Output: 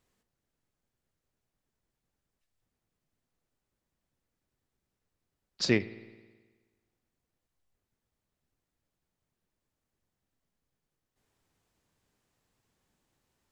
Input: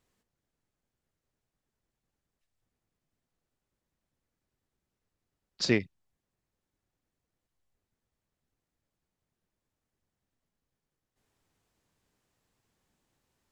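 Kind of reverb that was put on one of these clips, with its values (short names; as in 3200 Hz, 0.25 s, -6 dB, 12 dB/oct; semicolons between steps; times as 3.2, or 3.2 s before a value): spring tank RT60 1.4 s, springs 53 ms, chirp 45 ms, DRR 16 dB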